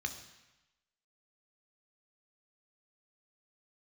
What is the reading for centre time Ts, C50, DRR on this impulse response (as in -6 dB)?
14 ms, 10.0 dB, 5.5 dB